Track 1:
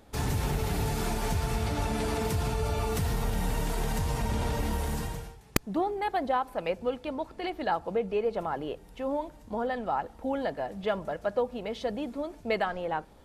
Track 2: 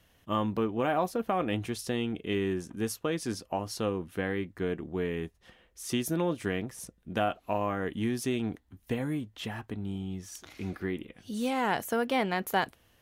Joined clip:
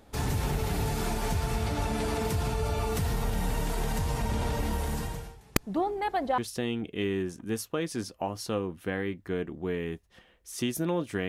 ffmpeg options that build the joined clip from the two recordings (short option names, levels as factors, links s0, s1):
-filter_complex "[0:a]apad=whole_dur=11.28,atrim=end=11.28,atrim=end=6.382[s0];[1:a]atrim=start=1.688:end=6.59[s1];[s0][s1]acrossfade=d=0.004:c1=hsin:c2=hsin"